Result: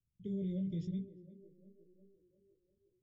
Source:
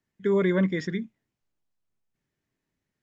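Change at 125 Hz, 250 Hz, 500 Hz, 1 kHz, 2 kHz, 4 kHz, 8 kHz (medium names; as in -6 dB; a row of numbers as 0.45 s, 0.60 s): -9.0 dB, -11.5 dB, -21.5 dB, under -40 dB, under -35 dB, under -15 dB, no reading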